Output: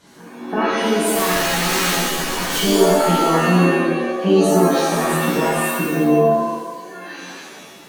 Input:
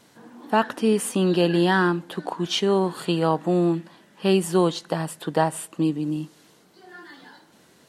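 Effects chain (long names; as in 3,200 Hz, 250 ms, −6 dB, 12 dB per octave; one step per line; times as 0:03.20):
gate on every frequency bin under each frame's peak −25 dB strong
downward compressor 5 to 1, threshold −24 dBFS, peak gain reduction 9.5 dB
0:01.13–0:02.56: wrap-around overflow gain 25.5 dB
reverb with rising layers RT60 1.1 s, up +7 semitones, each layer −2 dB, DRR −8 dB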